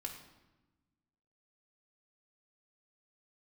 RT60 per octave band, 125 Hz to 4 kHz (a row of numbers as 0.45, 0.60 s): 1.7, 1.7, 1.1, 1.0, 0.90, 0.80 s